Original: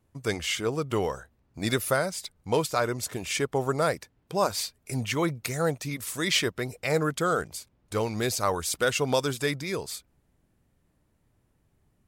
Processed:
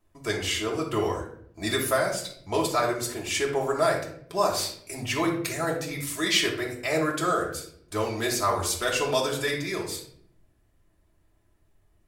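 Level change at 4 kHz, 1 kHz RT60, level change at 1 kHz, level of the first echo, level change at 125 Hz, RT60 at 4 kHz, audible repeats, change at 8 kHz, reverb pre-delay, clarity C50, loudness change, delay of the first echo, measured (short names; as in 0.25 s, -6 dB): +2.5 dB, 0.55 s, +2.5 dB, none, -3.0 dB, 0.45 s, none, +1.5 dB, 3 ms, 6.5 dB, +1.0 dB, none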